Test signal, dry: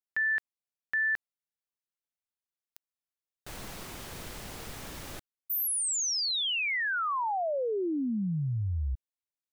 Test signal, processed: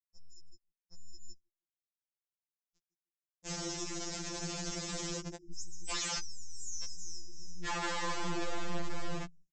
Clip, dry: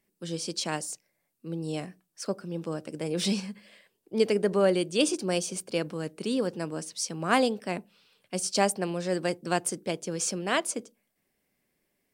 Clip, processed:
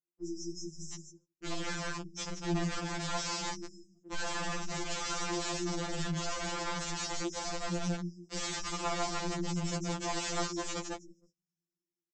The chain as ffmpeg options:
-filter_complex "[0:a]asplit=2[a][b];[b]adelay=159,lowpass=f=1.5k:p=1,volume=-5.5dB,asplit=2[c][d];[d]adelay=159,lowpass=f=1.5k:p=1,volume=0.28,asplit=2[e][f];[f]adelay=159,lowpass=f=1.5k:p=1,volume=0.28,asplit=2[g][h];[h]adelay=159,lowpass=f=1.5k:p=1,volume=0.28[i];[c][e][g][i]amix=inputs=4:normalize=0[j];[a][j]amix=inputs=2:normalize=0,acompressor=threshold=-29dB:ratio=2.5:attack=1.3:release=27:knee=1:detection=peak,highpass=83,flanger=delay=2.3:depth=2.1:regen=-7:speed=0.57:shape=triangular,asubboost=boost=4:cutoff=110,aeval=exprs='(tanh(178*val(0)+0.35)-tanh(0.35))/178':c=same,adynamicequalizer=threshold=0.001:dfrequency=3100:dqfactor=0.89:tfrequency=3100:tqfactor=0.89:attack=5:release=100:ratio=0.375:range=2:mode=boostabove:tftype=bell,dynaudnorm=f=260:g=9:m=10.5dB,afftfilt=real='re*(1-between(b*sr/4096,480,5000))':imag='im*(1-between(b*sr/4096,480,5000))':win_size=4096:overlap=0.75,agate=range=-21dB:threshold=-59dB:ratio=16:release=90:detection=rms,aresample=16000,aeval=exprs='(mod(59.6*val(0)+1,2)-1)/59.6':c=same,aresample=44100,afftfilt=real='re*2.83*eq(mod(b,8),0)':imag='im*2.83*eq(mod(b,8),0)':win_size=2048:overlap=0.75,volume=6dB"

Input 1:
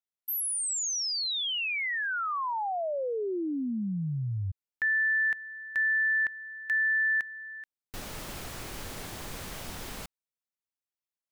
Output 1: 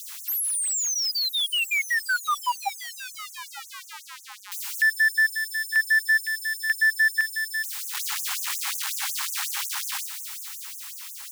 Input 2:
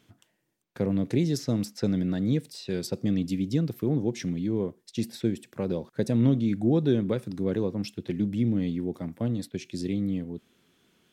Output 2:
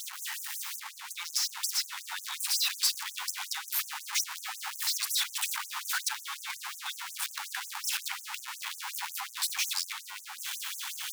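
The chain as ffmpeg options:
-af "aeval=exprs='val(0)+0.5*0.0398*sgn(val(0))':c=same,dynaudnorm=f=240:g=13:m=5.5dB,afftfilt=real='re*gte(b*sr/1024,730*pow(6100/730,0.5+0.5*sin(2*PI*5.5*pts/sr)))':imag='im*gte(b*sr/1024,730*pow(6100/730,0.5+0.5*sin(2*PI*5.5*pts/sr)))':win_size=1024:overlap=0.75"

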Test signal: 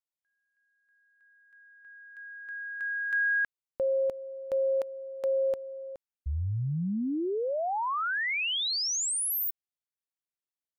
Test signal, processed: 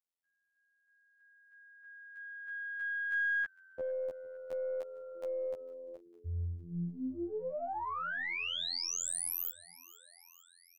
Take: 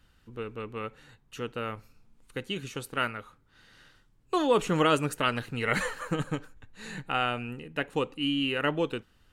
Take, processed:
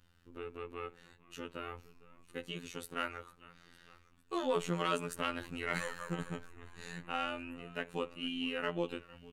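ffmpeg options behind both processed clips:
-filter_complex "[0:a]asplit=2[a][b];[b]acompressor=threshold=-37dB:ratio=6:attack=7.1:release=56,volume=-3dB[c];[a][c]amix=inputs=2:normalize=0,asplit=6[d][e][f][g][h][i];[e]adelay=454,afreqshift=-64,volume=-21dB[j];[f]adelay=908,afreqshift=-128,volume=-24.9dB[k];[g]adelay=1362,afreqshift=-192,volume=-28.8dB[l];[h]adelay=1816,afreqshift=-256,volume=-32.6dB[m];[i]adelay=2270,afreqshift=-320,volume=-36.5dB[n];[d][j][k][l][m][n]amix=inputs=6:normalize=0,aeval=exprs='0.355*(cos(1*acos(clip(val(0)/0.355,-1,1)))-cos(1*PI/2))+0.0501*(cos(2*acos(clip(val(0)/0.355,-1,1)))-cos(2*PI/2))+0.00501*(cos(5*acos(clip(val(0)/0.355,-1,1)))-cos(5*PI/2))+0.00794*(cos(8*acos(clip(val(0)/0.355,-1,1)))-cos(8*PI/2))':c=same,afftfilt=real='hypot(re,im)*cos(PI*b)':imag='0':win_size=2048:overlap=0.75,volume=-7dB"

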